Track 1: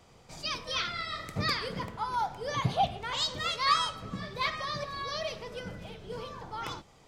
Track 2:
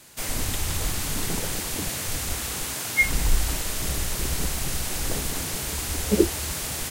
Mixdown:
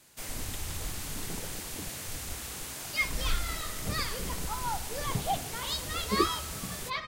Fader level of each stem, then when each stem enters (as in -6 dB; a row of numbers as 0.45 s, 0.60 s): -4.0 dB, -9.5 dB; 2.50 s, 0.00 s